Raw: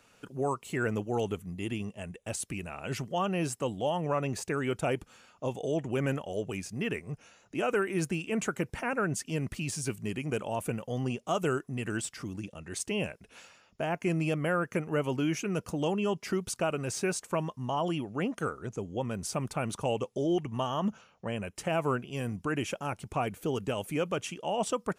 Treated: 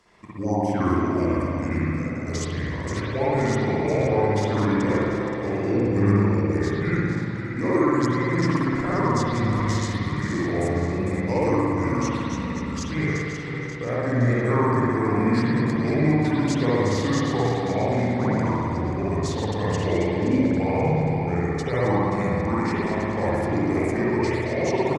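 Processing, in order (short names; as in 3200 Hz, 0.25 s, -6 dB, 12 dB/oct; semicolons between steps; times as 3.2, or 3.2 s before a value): regenerating reverse delay 0.265 s, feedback 70%, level -7.5 dB; pitch shift -5 st; spring tank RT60 2.1 s, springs 58 ms, chirp 55 ms, DRR -8 dB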